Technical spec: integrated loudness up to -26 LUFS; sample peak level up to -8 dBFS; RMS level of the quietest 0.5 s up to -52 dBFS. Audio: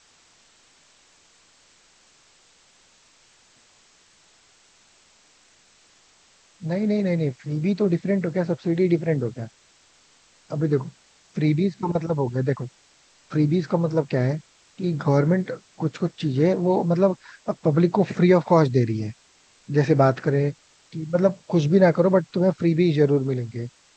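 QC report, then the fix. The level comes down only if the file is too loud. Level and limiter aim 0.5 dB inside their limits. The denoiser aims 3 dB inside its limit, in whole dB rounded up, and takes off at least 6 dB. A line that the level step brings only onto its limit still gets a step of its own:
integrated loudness -22.5 LUFS: fail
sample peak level -4.0 dBFS: fail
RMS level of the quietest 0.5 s -58 dBFS: pass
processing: trim -4 dB; peak limiter -8.5 dBFS

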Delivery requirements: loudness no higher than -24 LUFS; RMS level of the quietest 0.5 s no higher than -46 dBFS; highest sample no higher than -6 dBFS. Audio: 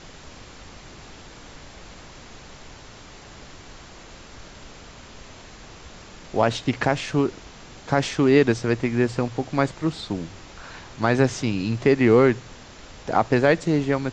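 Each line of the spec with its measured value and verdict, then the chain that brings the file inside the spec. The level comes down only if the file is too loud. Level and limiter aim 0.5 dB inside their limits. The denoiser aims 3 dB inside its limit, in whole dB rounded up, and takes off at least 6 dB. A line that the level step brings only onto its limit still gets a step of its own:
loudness -22.0 LUFS: fail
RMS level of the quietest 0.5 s -44 dBFS: fail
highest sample -5.0 dBFS: fail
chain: trim -2.5 dB

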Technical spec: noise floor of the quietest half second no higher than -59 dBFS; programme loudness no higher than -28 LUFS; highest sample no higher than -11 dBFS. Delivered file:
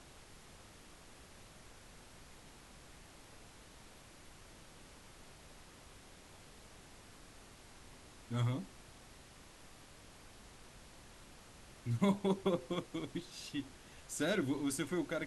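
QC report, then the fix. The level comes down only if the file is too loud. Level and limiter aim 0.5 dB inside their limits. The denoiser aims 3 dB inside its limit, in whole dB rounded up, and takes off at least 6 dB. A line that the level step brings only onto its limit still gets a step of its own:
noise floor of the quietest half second -58 dBFS: fail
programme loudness -38.0 LUFS: pass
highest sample -20.5 dBFS: pass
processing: noise reduction 6 dB, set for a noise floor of -58 dBFS

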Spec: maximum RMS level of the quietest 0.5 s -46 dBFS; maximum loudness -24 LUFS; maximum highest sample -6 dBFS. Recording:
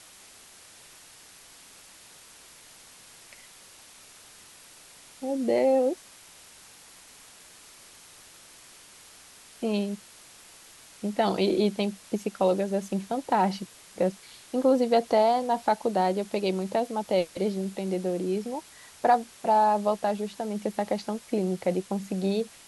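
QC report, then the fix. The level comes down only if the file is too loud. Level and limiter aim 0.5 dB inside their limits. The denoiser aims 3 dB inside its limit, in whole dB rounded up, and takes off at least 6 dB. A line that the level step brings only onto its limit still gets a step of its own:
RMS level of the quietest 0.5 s -51 dBFS: pass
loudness -27.0 LUFS: pass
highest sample -9.5 dBFS: pass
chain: none needed

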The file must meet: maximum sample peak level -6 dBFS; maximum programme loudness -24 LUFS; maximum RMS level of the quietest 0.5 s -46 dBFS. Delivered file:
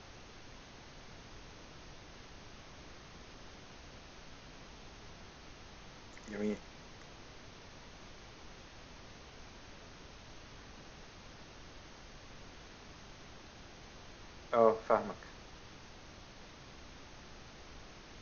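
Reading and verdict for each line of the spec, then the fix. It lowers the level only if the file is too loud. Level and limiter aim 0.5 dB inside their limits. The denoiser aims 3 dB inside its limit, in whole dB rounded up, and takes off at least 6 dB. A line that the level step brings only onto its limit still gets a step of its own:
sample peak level -13.5 dBFS: pass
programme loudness -44.0 LUFS: pass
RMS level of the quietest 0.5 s -53 dBFS: pass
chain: none needed

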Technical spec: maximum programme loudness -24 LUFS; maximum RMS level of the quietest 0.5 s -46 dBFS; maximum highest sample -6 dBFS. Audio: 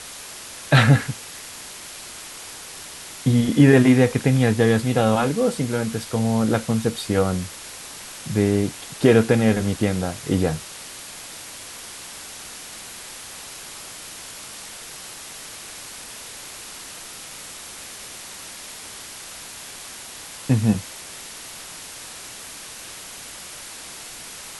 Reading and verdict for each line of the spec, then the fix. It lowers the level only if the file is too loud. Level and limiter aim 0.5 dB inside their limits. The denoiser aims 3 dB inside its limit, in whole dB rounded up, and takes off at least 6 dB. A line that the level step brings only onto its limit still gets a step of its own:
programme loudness -20.0 LUFS: fail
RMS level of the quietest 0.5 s -38 dBFS: fail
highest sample -2.5 dBFS: fail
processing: noise reduction 7 dB, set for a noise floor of -38 dBFS; trim -4.5 dB

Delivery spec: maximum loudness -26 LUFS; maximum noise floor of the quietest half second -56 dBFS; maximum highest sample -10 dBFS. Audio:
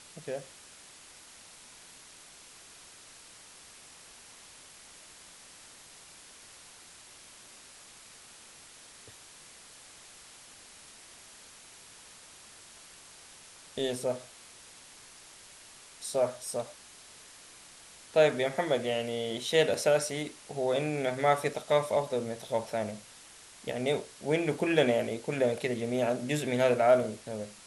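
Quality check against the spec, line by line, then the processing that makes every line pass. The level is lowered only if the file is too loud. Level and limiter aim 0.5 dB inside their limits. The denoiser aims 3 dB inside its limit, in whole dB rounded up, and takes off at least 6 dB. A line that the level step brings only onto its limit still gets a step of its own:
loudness -30.0 LUFS: pass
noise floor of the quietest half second -53 dBFS: fail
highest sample -11.5 dBFS: pass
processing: noise reduction 6 dB, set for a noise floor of -53 dBFS

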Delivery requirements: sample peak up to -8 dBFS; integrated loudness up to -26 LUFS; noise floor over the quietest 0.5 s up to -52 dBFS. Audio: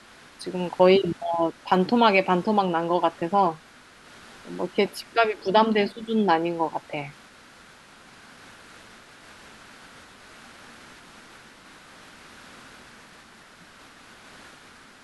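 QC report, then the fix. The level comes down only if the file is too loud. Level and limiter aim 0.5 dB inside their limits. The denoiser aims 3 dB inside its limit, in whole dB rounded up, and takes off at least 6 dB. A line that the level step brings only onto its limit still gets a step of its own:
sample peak -5.5 dBFS: fail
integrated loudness -23.0 LUFS: fail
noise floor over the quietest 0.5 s -51 dBFS: fail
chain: trim -3.5 dB

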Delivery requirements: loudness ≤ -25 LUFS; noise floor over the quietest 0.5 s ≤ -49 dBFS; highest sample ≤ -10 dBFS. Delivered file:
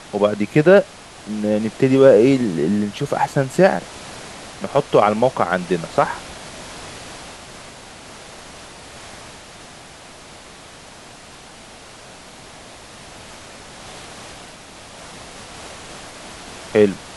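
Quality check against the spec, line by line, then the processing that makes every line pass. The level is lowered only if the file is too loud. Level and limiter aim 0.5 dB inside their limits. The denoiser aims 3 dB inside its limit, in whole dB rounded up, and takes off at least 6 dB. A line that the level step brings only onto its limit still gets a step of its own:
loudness -17.5 LUFS: fail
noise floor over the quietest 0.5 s -41 dBFS: fail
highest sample -1.5 dBFS: fail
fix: noise reduction 6 dB, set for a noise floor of -41 dBFS; trim -8 dB; peak limiter -10.5 dBFS

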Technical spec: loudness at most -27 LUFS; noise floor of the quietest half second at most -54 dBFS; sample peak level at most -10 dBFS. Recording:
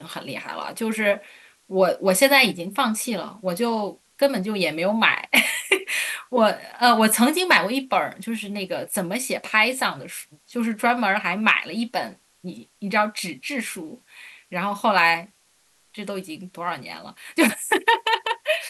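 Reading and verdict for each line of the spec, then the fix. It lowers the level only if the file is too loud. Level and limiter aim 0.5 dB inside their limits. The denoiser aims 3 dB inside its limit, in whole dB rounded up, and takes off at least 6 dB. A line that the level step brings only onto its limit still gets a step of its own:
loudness -21.5 LUFS: fail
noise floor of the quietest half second -62 dBFS: pass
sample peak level -4.0 dBFS: fail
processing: trim -6 dB; peak limiter -10.5 dBFS

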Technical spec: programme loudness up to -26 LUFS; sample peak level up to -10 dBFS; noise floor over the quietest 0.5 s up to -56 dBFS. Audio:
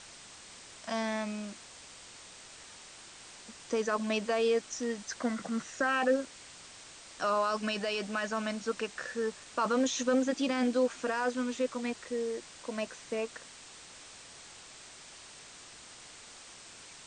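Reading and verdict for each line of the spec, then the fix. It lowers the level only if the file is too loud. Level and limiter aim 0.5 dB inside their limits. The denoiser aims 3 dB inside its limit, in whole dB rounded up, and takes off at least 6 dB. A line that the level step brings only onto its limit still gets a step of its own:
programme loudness -32.5 LUFS: pass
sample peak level -17.5 dBFS: pass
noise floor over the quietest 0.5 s -51 dBFS: fail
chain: noise reduction 8 dB, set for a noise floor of -51 dBFS

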